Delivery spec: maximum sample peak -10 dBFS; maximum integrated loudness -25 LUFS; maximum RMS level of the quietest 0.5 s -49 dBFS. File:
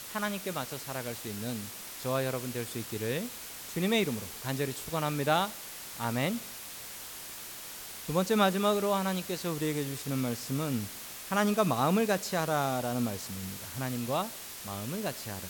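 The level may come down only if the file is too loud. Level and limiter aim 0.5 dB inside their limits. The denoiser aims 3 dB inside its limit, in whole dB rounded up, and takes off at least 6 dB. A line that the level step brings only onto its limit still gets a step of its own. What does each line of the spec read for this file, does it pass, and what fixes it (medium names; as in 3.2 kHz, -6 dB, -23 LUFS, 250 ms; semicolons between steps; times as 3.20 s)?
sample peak -13.0 dBFS: pass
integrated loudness -32.0 LUFS: pass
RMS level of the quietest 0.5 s -44 dBFS: fail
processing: noise reduction 8 dB, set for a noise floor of -44 dBFS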